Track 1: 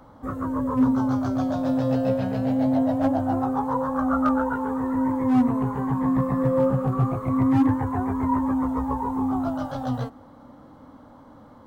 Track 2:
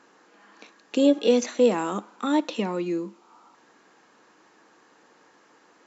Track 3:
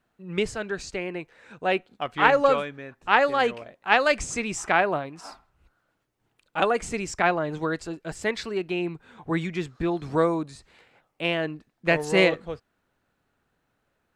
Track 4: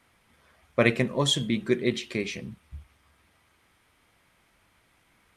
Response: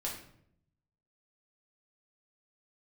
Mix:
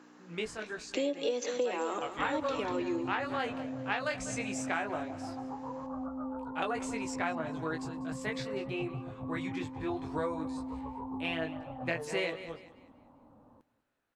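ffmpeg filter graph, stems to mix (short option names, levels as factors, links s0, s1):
-filter_complex "[0:a]lowpass=f=1000:w=0.5412,lowpass=f=1000:w=1.3066,alimiter=limit=0.0891:level=0:latency=1:release=450,crystalizer=i=5.5:c=0,adelay=1950,volume=0.266,asplit=2[s0][s1];[s1]volume=0.119[s2];[1:a]aeval=exprs='val(0)+0.0158*(sin(2*PI*60*n/s)+sin(2*PI*2*60*n/s)/2+sin(2*PI*3*60*n/s)/3+sin(2*PI*4*60*n/s)/4+sin(2*PI*5*60*n/s)/5)':c=same,highpass=f=320:w=0.5412,highpass=f=320:w=1.3066,volume=0.708,asplit=2[s3][s4];[s4]volume=0.251[s5];[2:a]flanger=delay=18:depth=2.2:speed=0.16,lowshelf=f=350:g=-7,volume=0.596,asplit=2[s6][s7];[s7]volume=0.126[s8];[s2][s5][s8]amix=inputs=3:normalize=0,aecho=0:1:195|390|585|780|975:1|0.33|0.109|0.0359|0.0119[s9];[s0][s3][s6][s9]amix=inputs=4:normalize=0,acompressor=threshold=0.0398:ratio=12"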